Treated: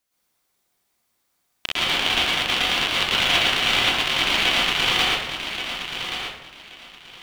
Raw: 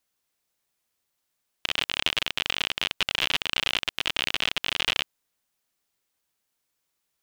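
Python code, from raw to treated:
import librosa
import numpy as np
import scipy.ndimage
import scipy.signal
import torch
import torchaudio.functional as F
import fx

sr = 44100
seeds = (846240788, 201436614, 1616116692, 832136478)

p1 = x + fx.echo_feedback(x, sr, ms=1128, feedback_pct=20, wet_db=-8.5, dry=0)
y = fx.rev_plate(p1, sr, seeds[0], rt60_s=0.82, hf_ratio=0.5, predelay_ms=100, drr_db=-8.0)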